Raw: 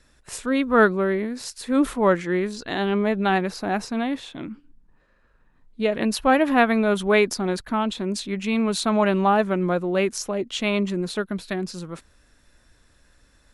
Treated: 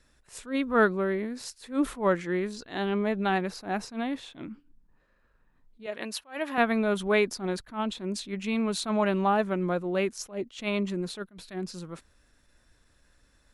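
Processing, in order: 5.86–6.58 s: high-pass 790 Hz 6 dB/octave; attacks held to a fixed rise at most 210 dB/s; trim -5.5 dB

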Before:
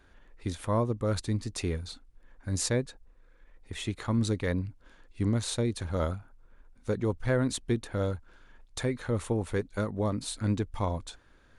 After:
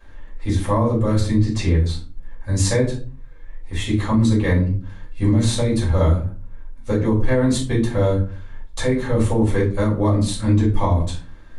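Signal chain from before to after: 1.41–1.84 s: low-pass 6.3 kHz 12 dB/octave; simulated room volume 230 m³, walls furnished, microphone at 5.6 m; peak limiter -8.5 dBFS, peak gain reduction 6.5 dB

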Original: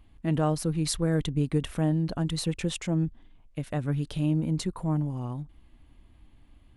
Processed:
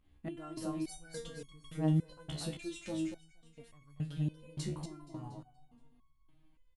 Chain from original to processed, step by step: volume shaper 102 bpm, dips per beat 1, -11 dB, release 87 ms; feedback delay 236 ms, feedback 41%, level -6 dB; resonator arpeggio 3.5 Hz 72–1100 Hz

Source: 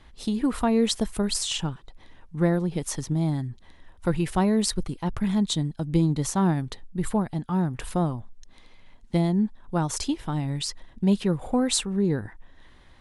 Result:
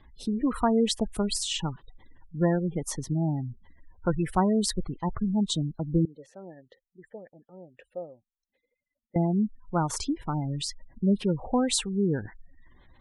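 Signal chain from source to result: spectral gate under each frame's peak -25 dB strong; 6.05–9.16 s: vowel filter e; dynamic bell 1.1 kHz, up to +5 dB, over -40 dBFS, Q 0.84; trim -2.5 dB

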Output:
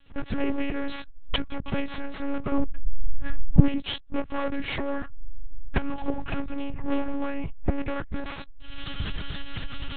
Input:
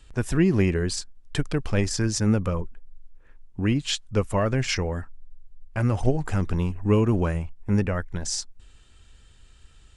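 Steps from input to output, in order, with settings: comb filter that takes the minimum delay 7.5 ms; recorder AGC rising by 58 dB/s; 2.52–3.68 s: bass shelf 410 Hz +9.5 dB; monotone LPC vocoder at 8 kHz 280 Hz; trim -3.5 dB

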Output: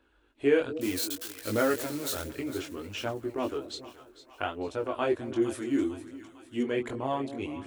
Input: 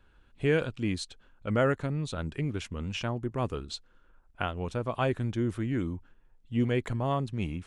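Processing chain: 0.81–2.24 s: zero-crossing glitches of -23.5 dBFS; resonant low shelf 230 Hz -8 dB, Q 3; two-band feedback delay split 700 Hz, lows 209 ms, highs 454 ms, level -14 dB; chorus 0.64 Hz, delay 18.5 ms, depth 4.4 ms; high-pass 40 Hz; phaser 1.3 Hz, delay 3.5 ms, feedback 31%; 5.42–6.63 s: tone controls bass -1 dB, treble +13 dB; trim +1.5 dB

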